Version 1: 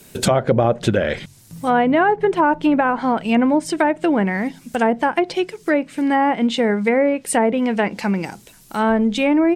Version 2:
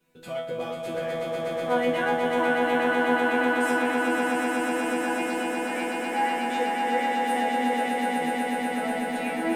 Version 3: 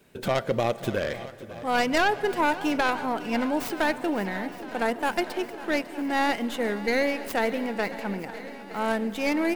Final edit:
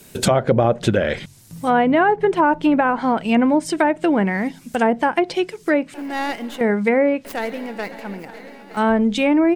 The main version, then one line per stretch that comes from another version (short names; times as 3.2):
1
5.94–6.61 from 3
7.25–8.77 from 3
not used: 2